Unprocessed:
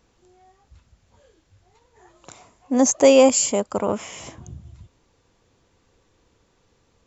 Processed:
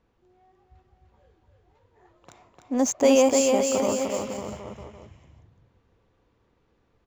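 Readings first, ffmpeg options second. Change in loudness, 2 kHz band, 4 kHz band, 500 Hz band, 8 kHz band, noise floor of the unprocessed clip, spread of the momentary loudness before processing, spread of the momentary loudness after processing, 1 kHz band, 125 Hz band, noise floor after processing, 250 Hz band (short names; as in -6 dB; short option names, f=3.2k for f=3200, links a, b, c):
-5.0 dB, -3.5 dB, -3.5 dB, -3.5 dB, n/a, -64 dBFS, 15 LU, 18 LU, -3.0 dB, -3.5 dB, -68 dBFS, -3.0 dB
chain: -af "aecho=1:1:300|555|771.8|956|1113:0.631|0.398|0.251|0.158|0.1,adynamicsmooth=sensitivity=7:basefreq=3.1k,volume=-5.5dB"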